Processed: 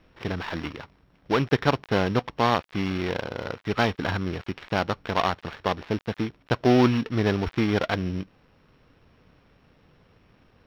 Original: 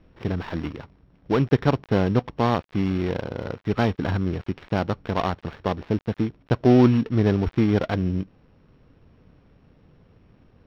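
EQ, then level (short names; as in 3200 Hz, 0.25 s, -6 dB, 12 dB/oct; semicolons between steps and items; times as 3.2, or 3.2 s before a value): tilt shelf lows -5.5 dB, about 630 Hz; 0.0 dB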